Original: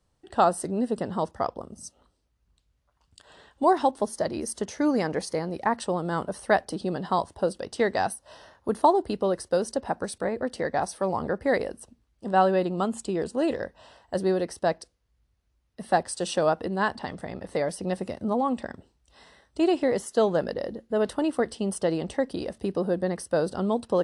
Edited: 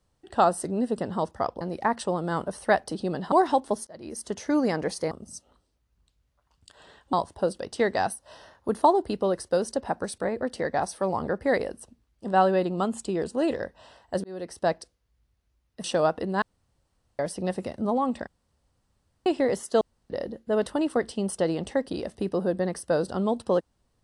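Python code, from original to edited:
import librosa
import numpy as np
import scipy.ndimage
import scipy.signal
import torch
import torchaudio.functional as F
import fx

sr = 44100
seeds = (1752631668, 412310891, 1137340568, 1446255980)

y = fx.edit(x, sr, fx.swap(start_s=1.61, length_s=2.02, other_s=5.42, other_length_s=1.71),
    fx.fade_in_span(start_s=4.18, length_s=0.7, curve='qsin'),
    fx.fade_in_span(start_s=14.24, length_s=0.41),
    fx.cut(start_s=15.84, length_s=0.43),
    fx.room_tone_fill(start_s=16.85, length_s=0.77),
    fx.room_tone_fill(start_s=18.7, length_s=0.99),
    fx.room_tone_fill(start_s=20.24, length_s=0.29), tone=tone)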